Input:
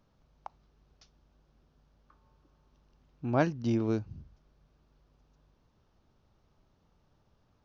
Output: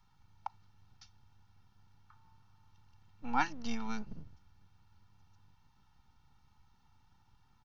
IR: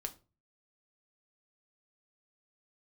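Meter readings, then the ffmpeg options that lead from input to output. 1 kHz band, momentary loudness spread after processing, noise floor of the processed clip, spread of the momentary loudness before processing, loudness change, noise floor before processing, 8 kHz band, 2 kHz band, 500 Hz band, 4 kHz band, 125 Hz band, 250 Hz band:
+2.0 dB, 16 LU, -68 dBFS, 12 LU, -8.0 dB, -71 dBFS, no reading, +1.0 dB, -18.5 dB, +2.5 dB, -17.0 dB, -9.5 dB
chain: -filter_complex "[0:a]afftfilt=real='re*(1-between(b*sr/4096,170,680))':imag='im*(1-between(b*sr/4096,170,680))':win_size=4096:overlap=0.75,aecho=1:1:2.2:0.98,acrossover=split=240|2400[s0][s1][s2];[s0]aeval=exprs='abs(val(0))':c=same[s3];[s3][s1][s2]amix=inputs=3:normalize=0"

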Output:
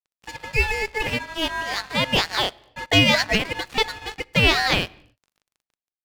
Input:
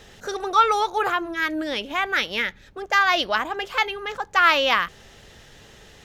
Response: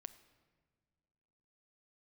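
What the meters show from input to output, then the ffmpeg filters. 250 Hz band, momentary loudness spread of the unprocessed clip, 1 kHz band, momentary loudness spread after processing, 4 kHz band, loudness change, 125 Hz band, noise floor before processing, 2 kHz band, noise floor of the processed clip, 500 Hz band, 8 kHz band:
+5.0 dB, 11 LU, -6.5 dB, 11 LU, +5.0 dB, +0.5 dB, no reading, -49 dBFS, 0.0 dB, under -85 dBFS, 0.0 dB, +5.5 dB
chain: -filter_complex "[0:a]aeval=exprs='val(0)*sin(2*PI*1300*n/s)':c=same,dynaudnorm=f=420:g=5:m=3.76,aeval=exprs='val(0)+0.00891*(sin(2*PI*50*n/s)+sin(2*PI*2*50*n/s)/2+sin(2*PI*3*50*n/s)/3+sin(2*PI*4*50*n/s)/4+sin(2*PI*5*50*n/s)/5)':c=same,aeval=exprs='sgn(val(0))*max(abs(val(0))-0.0224,0)':c=same,asplit=2[s0][s1];[1:a]atrim=start_sample=2205,afade=t=out:st=0.35:d=0.01,atrim=end_sample=15876[s2];[s1][s2]afir=irnorm=-1:irlink=0,volume=0.891[s3];[s0][s3]amix=inputs=2:normalize=0,volume=0.668"

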